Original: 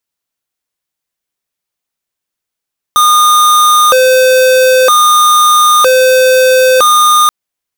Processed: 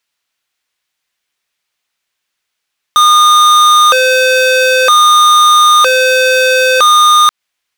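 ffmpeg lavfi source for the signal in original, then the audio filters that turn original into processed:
-f lavfi -i "aevalsrc='0.473*(2*lt(mod((867*t+353/0.52*(0.5-abs(mod(0.52*t,1)-0.5))),1),0.5)-1)':duration=4.33:sample_rate=44100"
-af "equalizer=frequency=2500:width=0.36:gain=12.5,alimiter=limit=-1dB:level=0:latency=1:release=126"

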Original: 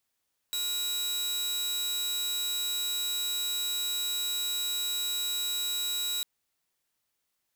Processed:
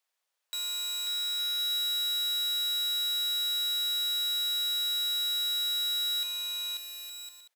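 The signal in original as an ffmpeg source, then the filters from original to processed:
-f lavfi -i "aevalsrc='0.0473*(2*mod(3880*t,1)-1)':duration=5.7:sample_rate=44100"
-filter_complex "[0:a]highpass=frequency=480:width=0.5412,highpass=frequency=480:width=1.3066,highshelf=frequency=7300:gain=-7,asplit=2[link_01][link_02];[link_02]aecho=0:1:540|864|1058|1175|1245:0.631|0.398|0.251|0.158|0.1[link_03];[link_01][link_03]amix=inputs=2:normalize=0"

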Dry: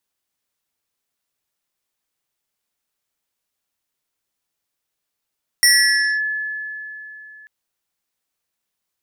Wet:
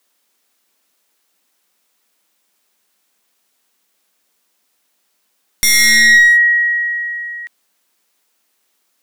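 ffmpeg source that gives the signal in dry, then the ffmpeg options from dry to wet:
-f lavfi -i "aevalsrc='0.376*pow(10,-3*t/3.41)*sin(2*PI*1720*t+2.4*clip(1-t/0.58,0,1)*sin(2*PI*2.13*1720*t))':duration=1.84:sample_rate=44100"
-af "afreqshift=180,aeval=exprs='clip(val(0),-1,0.0794)':channel_layout=same,alimiter=level_in=15dB:limit=-1dB:release=50:level=0:latency=1"

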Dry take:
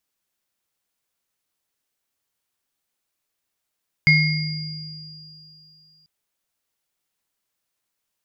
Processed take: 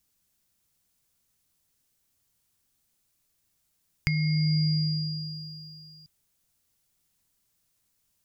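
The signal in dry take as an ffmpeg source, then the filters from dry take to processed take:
-f lavfi -i "aevalsrc='0.168*pow(10,-3*t/2.39)*sin(2*PI*155*t)+0.299*pow(10,-3*t/0.93)*sin(2*PI*2150*t)+0.075*pow(10,-3*t/3.59)*sin(2*PI*4820*t)':duration=1.99:sample_rate=44100"
-af "bass=frequency=250:gain=14,treble=frequency=4000:gain=7,acompressor=threshold=-21dB:ratio=6,alimiter=limit=-11dB:level=0:latency=1:release=476"

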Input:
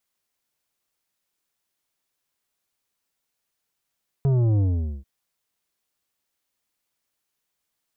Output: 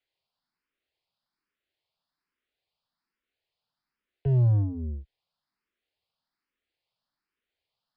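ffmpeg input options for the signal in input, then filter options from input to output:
-f lavfi -i "aevalsrc='0.126*clip((0.79-t)/0.45,0,1)*tanh(2.99*sin(2*PI*140*0.79/log(65/140)*(exp(log(65/140)*t/0.79)-1)))/tanh(2.99)':duration=0.79:sample_rate=44100"
-filter_complex "[0:a]acrossover=split=100|320|350[link_01][link_02][link_03][link_04];[link_04]asoftclip=type=hard:threshold=-39dB[link_05];[link_01][link_02][link_03][link_05]amix=inputs=4:normalize=0,aresample=11025,aresample=44100,asplit=2[link_06][link_07];[link_07]afreqshift=1.2[link_08];[link_06][link_08]amix=inputs=2:normalize=1"

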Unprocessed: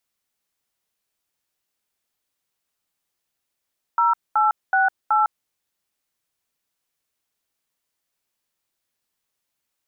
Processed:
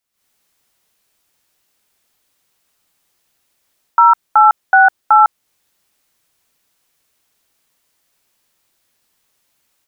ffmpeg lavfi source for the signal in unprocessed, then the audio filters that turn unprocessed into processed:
-f lavfi -i "aevalsrc='0.133*clip(min(mod(t,0.375),0.155-mod(t,0.375))/0.002,0,1)*(eq(floor(t/0.375),0)*(sin(2*PI*941*mod(t,0.375))+sin(2*PI*1336*mod(t,0.375)))+eq(floor(t/0.375),1)*(sin(2*PI*852*mod(t,0.375))+sin(2*PI*1336*mod(t,0.375)))+eq(floor(t/0.375),2)*(sin(2*PI*770*mod(t,0.375))+sin(2*PI*1477*mod(t,0.375)))+eq(floor(t/0.375),3)*(sin(2*PI*852*mod(t,0.375))+sin(2*PI*1336*mod(t,0.375))))':duration=1.5:sample_rate=44100"
-af "dynaudnorm=framelen=120:gausssize=3:maxgain=14dB"

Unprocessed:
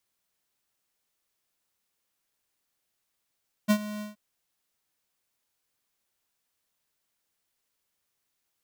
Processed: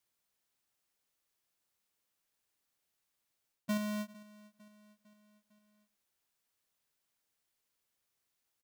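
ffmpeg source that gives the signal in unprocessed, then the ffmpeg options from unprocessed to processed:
-f lavfi -i "aevalsrc='0.112*(2*lt(mod(210*t,1),0.5)-1)':duration=0.475:sample_rate=44100,afade=type=in:duration=0.026,afade=type=out:start_time=0.026:duration=0.07:silence=0.15,afade=type=out:start_time=0.33:duration=0.145"
-af "areverse,acompressor=threshold=-32dB:ratio=6,areverse,aeval=exprs='0.0355*(cos(1*acos(clip(val(0)/0.0355,-1,1)))-cos(1*PI/2))+0.00316*(cos(3*acos(clip(val(0)/0.0355,-1,1)))-cos(3*PI/2))+0.00708*(cos(7*acos(clip(val(0)/0.0355,-1,1)))-cos(7*PI/2))':channel_layout=same,aecho=1:1:453|906|1359|1812:0.0891|0.0499|0.0279|0.0157"

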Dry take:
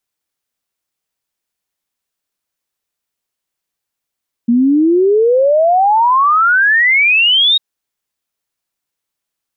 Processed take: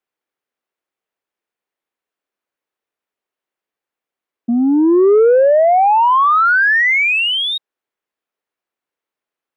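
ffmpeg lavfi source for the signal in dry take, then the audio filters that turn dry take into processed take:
-f lavfi -i "aevalsrc='0.422*clip(min(t,3.1-t)/0.01,0,1)*sin(2*PI*230*3.1/log(3800/230)*(exp(log(3800/230)*t/3.1)-1))':duration=3.1:sample_rate=44100"
-filter_complex "[0:a]equalizer=frequency=420:width_type=o:width=0.89:gain=4,asoftclip=type=tanh:threshold=-5dB,acrossover=split=220 2800:gain=0.224 1 0.2[link_01][link_02][link_03];[link_01][link_02][link_03]amix=inputs=3:normalize=0"

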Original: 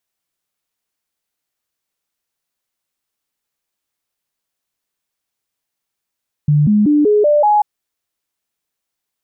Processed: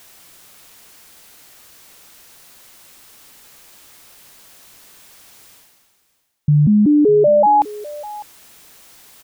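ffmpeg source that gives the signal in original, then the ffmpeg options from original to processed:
-f lavfi -i "aevalsrc='0.376*clip(min(mod(t,0.19),0.19-mod(t,0.19))/0.005,0,1)*sin(2*PI*148*pow(2,floor(t/0.19)/2)*mod(t,0.19))':duration=1.14:sample_rate=44100"
-af "areverse,acompressor=mode=upward:threshold=-19dB:ratio=2.5,areverse,aecho=1:1:603:0.119"

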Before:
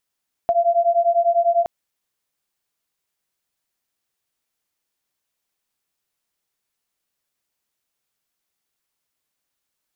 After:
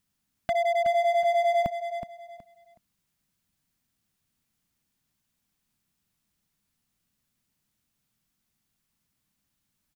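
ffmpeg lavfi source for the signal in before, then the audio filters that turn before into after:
-f lavfi -i "aevalsrc='0.133*(sin(2*PI*680*t)+sin(2*PI*690*t))':duration=1.17:sample_rate=44100"
-af "lowshelf=frequency=300:width_type=q:width=1.5:gain=12,asoftclip=type=hard:threshold=-22.5dB,aecho=1:1:371|742|1113:0.355|0.0887|0.0222"

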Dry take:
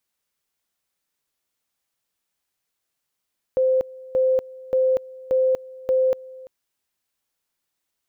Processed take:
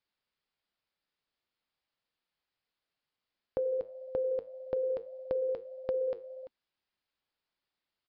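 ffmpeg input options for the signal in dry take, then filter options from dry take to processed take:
-f lavfi -i "aevalsrc='pow(10,(-15.5-21.5*gte(mod(t,0.58),0.24))/20)*sin(2*PI*519*t)':duration=2.9:sample_rate=44100"
-af "flanger=delay=1.4:depth=8.6:regen=-78:speed=1.7:shape=triangular,aresample=11025,aresample=44100,acompressor=threshold=-30dB:ratio=6"

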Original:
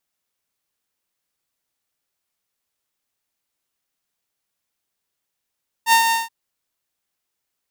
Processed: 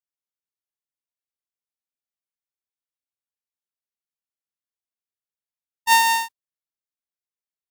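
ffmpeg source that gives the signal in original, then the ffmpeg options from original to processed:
-f lavfi -i "aevalsrc='0.422*(2*mod(914*t,1)-1)':duration=0.427:sample_rate=44100,afade=type=in:duration=0.064,afade=type=out:start_time=0.064:duration=0.101:silence=0.501,afade=type=out:start_time=0.26:duration=0.167"
-af "agate=range=-20dB:threshold=-33dB:ratio=16:detection=peak"

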